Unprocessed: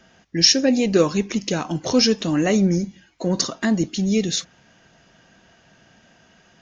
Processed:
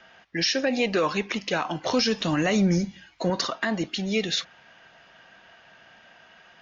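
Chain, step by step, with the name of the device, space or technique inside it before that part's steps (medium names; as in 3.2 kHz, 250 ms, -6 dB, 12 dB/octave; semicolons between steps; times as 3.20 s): 1.93–3.30 s: tone controls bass +9 dB, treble +8 dB; DJ mixer with the lows and highs turned down (three-band isolator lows -14 dB, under 580 Hz, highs -23 dB, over 4.3 kHz; peak limiter -19.5 dBFS, peak gain reduction 11.5 dB); trim +5 dB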